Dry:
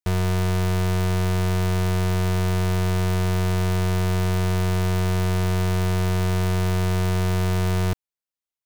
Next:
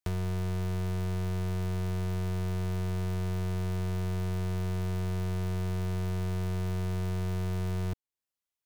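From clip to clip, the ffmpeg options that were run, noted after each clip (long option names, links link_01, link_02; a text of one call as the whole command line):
ffmpeg -i in.wav -filter_complex "[0:a]acrossover=split=410|1000[link_01][link_02][link_03];[link_01]acompressor=threshold=-33dB:ratio=4[link_04];[link_02]acompressor=threshold=-49dB:ratio=4[link_05];[link_03]acompressor=threshold=-47dB:ratio=4[link_06];[link_04][link_05][link_06]amix=inputs=3:normalize=0" out.wav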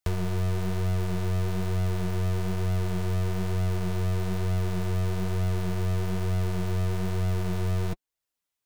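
ffmpeg -i in.wav -af "flanger=delay=1.4:depth=7.9:regen=33:speed=1.1:shape=sinusoidal,volume=8.5dB" out.wav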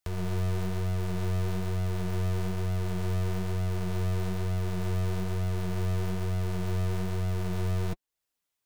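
ffmpeg -i in.wav -af "alimiter=level_in=1dB:limit=-24dB:level=0:latency=1:release=278,volume=-1dB,volume=1.5dB" out.wav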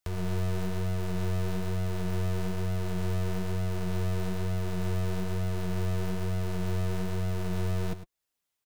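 ffmpeg -i in.wav -af "aecho=1:1:104:0.237" out.wav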